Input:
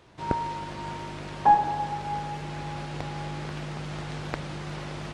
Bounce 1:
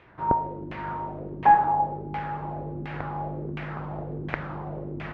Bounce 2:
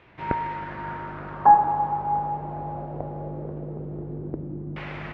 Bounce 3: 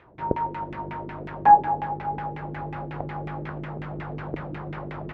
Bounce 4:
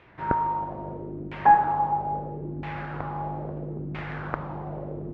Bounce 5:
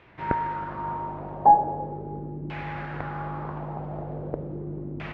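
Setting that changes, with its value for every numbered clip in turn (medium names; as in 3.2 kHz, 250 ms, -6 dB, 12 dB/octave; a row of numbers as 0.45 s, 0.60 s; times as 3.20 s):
LFO low-pass, rate: 1.4 Hz, 0.21 Hz, 5.5 Hz, 0.76 Hz, 0.4 Hz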